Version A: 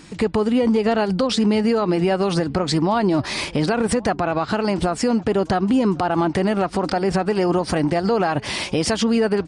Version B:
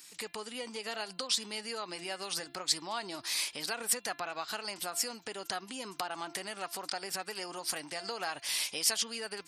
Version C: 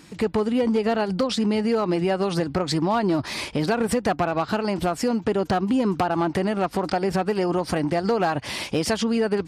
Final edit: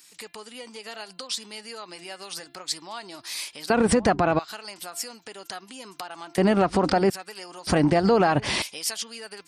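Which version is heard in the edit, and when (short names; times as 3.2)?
B
3.7–4.39 from A
6.38–7.1 from A
7.67–8.62 from A
not used: C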